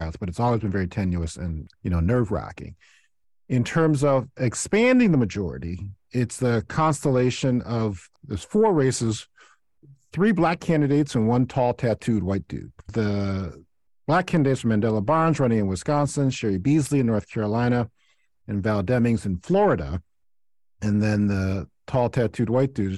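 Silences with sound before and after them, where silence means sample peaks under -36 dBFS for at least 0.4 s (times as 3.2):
2.72–3.5
9.22–10.14
13.57–14.08
17.86–18.48
19.99–20.82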